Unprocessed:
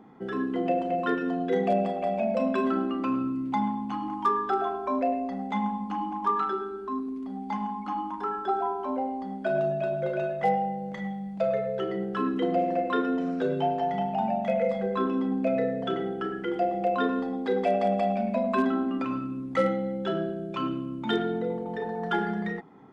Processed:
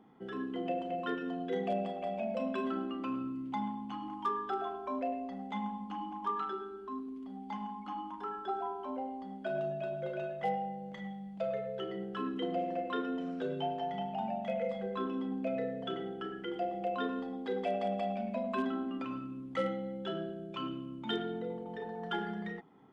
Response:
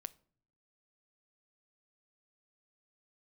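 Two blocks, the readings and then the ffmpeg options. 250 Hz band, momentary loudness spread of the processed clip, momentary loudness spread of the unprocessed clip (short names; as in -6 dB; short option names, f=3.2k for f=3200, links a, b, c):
-9.0 dB, 7 LU, 7 LU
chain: -af "equalizer=f=3.1k:t=o:w=0.31:g=8,volume=-9dB"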